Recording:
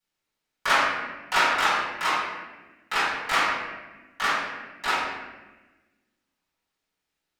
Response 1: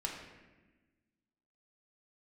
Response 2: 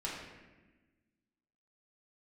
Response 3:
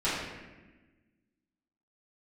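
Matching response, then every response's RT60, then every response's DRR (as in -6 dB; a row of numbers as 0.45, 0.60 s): 3; 1.2, 1.2, 1.2 s; -1.0, -6.0, -12.5 dB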